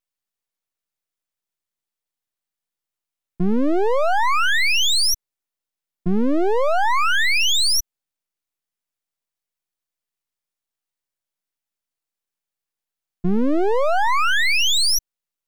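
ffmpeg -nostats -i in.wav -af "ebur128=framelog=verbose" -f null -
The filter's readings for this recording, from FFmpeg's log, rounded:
Integrated loudness:
  I:         -18.4 LUFS
  Threshold: -28.7 LUFS
Loudness range:
  LRA:         8.8 LU
  Threshold: -41.4 LUFS
  LRA low:   -28.0 LUFS
  LRA high:  -19.2 LUFS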